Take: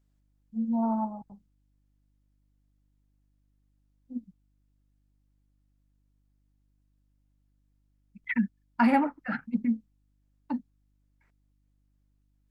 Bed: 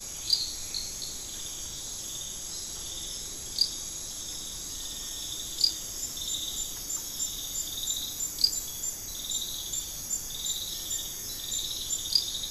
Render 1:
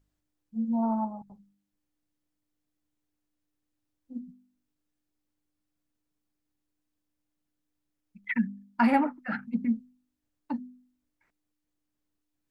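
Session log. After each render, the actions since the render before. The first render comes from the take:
hum removal 50 Hz, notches 5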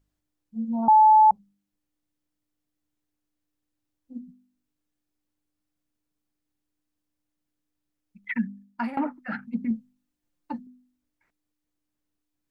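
0:00.88–0:01.31: beep over 865 Hz −11.5 dBFS
0:08.47–0:08.97: fade out equal-power, to −21 dB
0:09.70–0:10.67: comb filter 5.7 ms, depth 62%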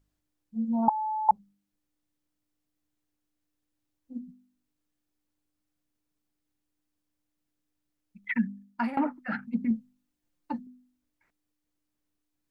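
0:00.89–0:01.29: four-pole ladder high-pass 1,200 Hz, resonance 80%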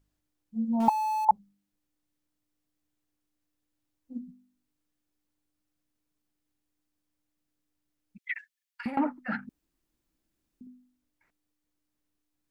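0:00.80–0:01.25: converter with a step at zero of −35.5 dBFS
0:08.18–0:08.86: inverse Chebyshev high-pass filter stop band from 390 Hz, stop band 70 dB
0:09.49–0:10.61: fill with room tone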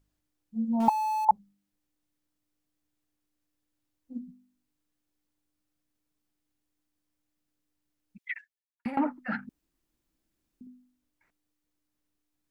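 0:08.21–0:08.85: fade out and dull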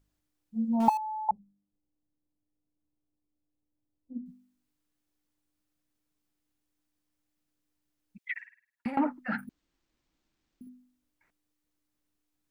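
0:00.97–0:04.26: Gaussian smoothing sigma 10 samples
0:08.32–0:08.88: flutter between parallel walls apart 9 metres, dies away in 0.46 s
0:09.38–0:10.69: bad sample-rate conversion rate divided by 4×, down none, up hold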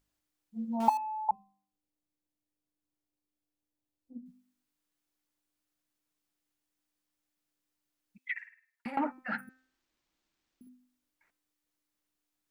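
low-shelf EQ 340 Hz −10 dB
hum removal 258.9 Hz, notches 10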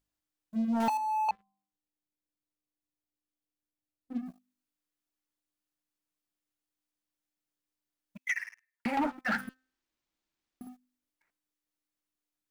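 downward compressor 2 to 1, threshold −39 dBFS, peak gain reduction 11.5 dB
leveller curve on the samples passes 3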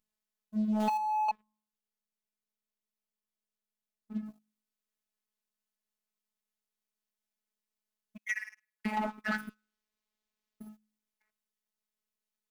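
phases set to zero 214 Hz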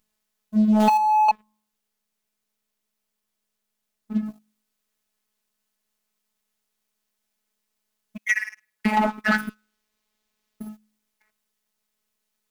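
level +12 dB

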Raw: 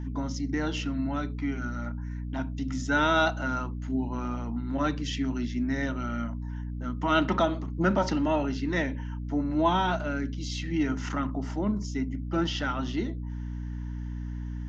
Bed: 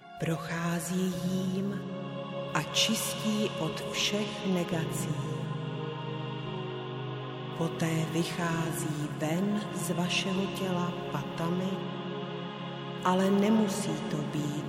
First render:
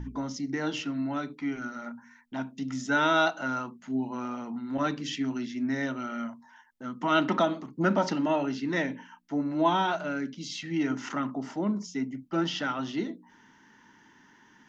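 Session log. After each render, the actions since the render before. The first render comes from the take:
hum removal 60 Hz, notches 5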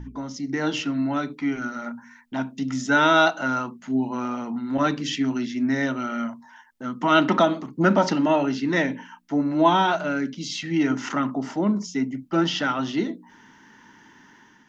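automatic gain control gain up to 6.5 dB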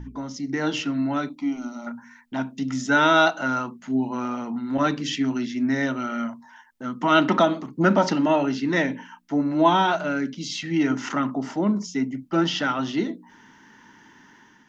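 0:01.29–0:01.87: phaser with its sweep stopped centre 440 Hz, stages 6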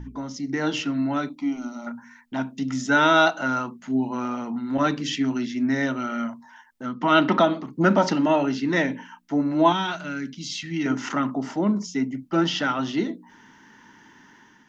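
0:06.86–0:07.67: low-pass filter 5,500 Hz 24 dB per octave
0:09.72–0:10.86: parametric band 610 Hz −12 dB 1.9 octaves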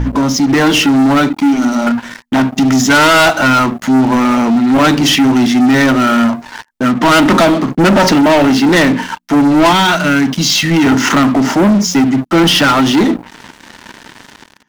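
in parallel at −2 dB: downward compressor 6 to 1, threshold −31 dBFS, peak gain reduction 17 dB
on the sum: leveller curve on the samples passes 5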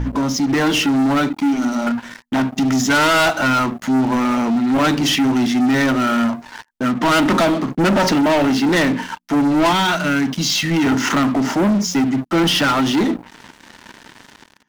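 level −6.5 dB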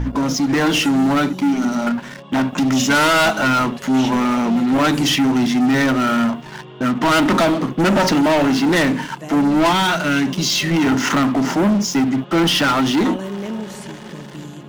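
mix in bed −1.5 dB

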